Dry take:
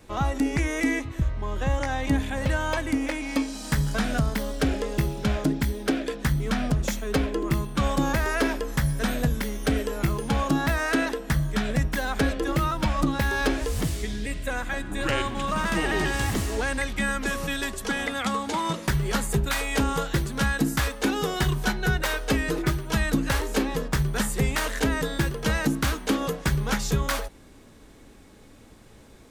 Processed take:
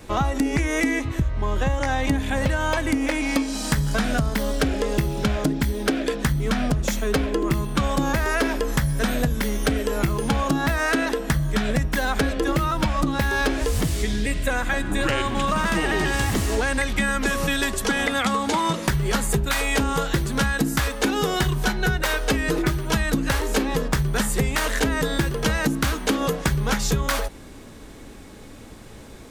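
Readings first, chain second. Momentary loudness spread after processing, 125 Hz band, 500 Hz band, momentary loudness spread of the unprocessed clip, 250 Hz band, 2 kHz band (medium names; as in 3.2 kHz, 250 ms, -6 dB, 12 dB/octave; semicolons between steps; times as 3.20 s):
2 LU, +2.0 dB, +4.0 dB, 3 LU, +2.5 dB, +3.5 dB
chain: compression, threshold -27 dBFS, peak gain reduction 9 dB; trim +8.5 dB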